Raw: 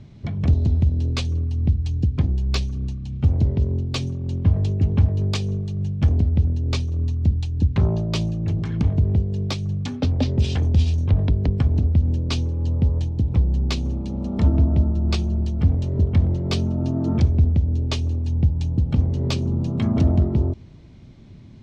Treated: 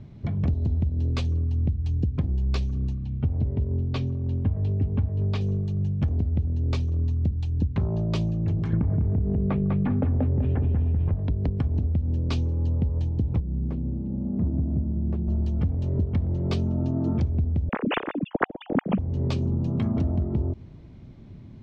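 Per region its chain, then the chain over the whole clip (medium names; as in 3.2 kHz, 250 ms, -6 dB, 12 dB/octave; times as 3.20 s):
3.05–5.41 s: low-pass 4.2 kHz + comb of notches 170 Hz
8.73–11.15 s: low-pass 2 kHz 24 dB/octave + feedback delay 199 ms, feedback 24%, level -3.5 dB + level flattener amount 70%
13.40–15.28 s: self-modulated delay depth 0.37 ms + band-pass filter 170 Hz, Q 0.78 + distance through air 68 m
17.69–18.99 s: formants replaced by sine waves + treble shelf 2 kHz +9 dB
whole clip: treble shelf 2.8 kHz -11 dB; compression, threshold -21 dBFS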